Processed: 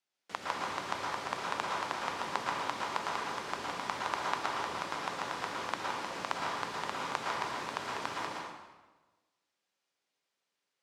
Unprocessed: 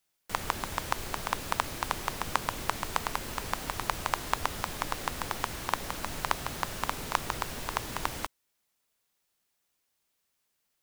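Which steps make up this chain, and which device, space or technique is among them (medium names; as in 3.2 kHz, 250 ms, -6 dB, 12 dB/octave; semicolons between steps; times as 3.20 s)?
supermarket ceiling speaker (band-pass 210–5700 Hz; reverberation RT60 1.2 s, pre-delay 107 ms, DRR -3.5 dB); trim -6.5 dB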